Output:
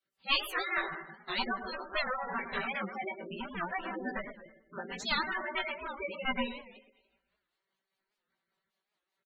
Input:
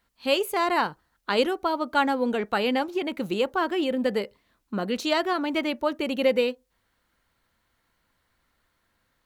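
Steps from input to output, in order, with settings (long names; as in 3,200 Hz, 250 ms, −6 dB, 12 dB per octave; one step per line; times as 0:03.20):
feedback delay that plays each chunk backwards 144 ms, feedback 43%, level −11 dB
noise reduction from a noise print of the clip's start 10 dB
rotating-speaker cabinet horn 5 Hz
asymmetric clip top −23.5 dBFS, bottom −12.5 dBFS
gate on every frequency bin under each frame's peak −10 dB weak
comb filter 5.2 ms, depth 71%
delay with a low-pass on its return 108 ms, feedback 36%, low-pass 2,300 Hz, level −10 dB
chorus effect 0.51 Hz, delay 15.5 ms, depth 2.8 ms
gate on every frequency bin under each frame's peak −15 dB strong
wow of a warped record 78 rpm, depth 160 cents
level +4 dB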